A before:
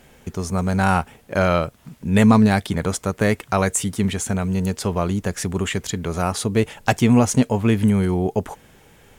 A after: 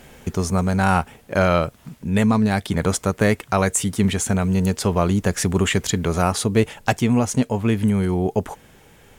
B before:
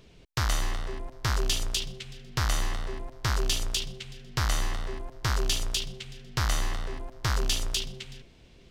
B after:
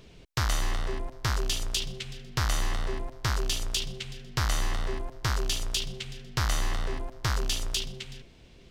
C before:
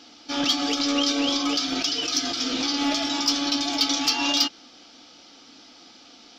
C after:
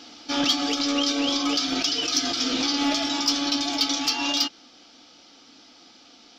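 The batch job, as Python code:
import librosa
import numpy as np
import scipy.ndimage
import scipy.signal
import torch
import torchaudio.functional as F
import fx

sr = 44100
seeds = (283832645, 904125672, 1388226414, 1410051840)

y = fx.rider(x, sr, range_db=5, speed_s=0.5)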